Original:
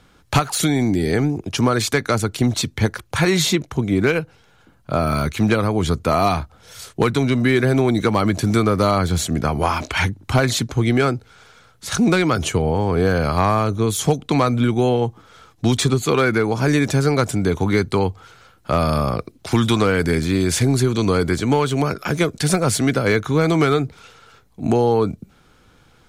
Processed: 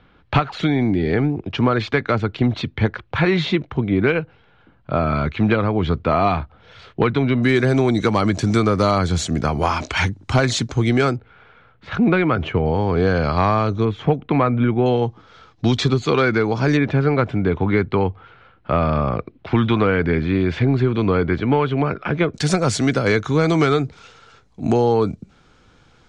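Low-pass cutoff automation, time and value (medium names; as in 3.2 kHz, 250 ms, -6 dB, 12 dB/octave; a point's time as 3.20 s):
low-pass 24 dB/octave
3.4 kHz
from 7.43 s 7.5 kHz
from 11.16 s 2.8 kHz
from 12.66 s 5 kHz
from 13.85 s 2.6 kHz
from 14.86 s 5.2 kHz
from 16.77 s 3 kHz
from 22.34 s 7.3 kHz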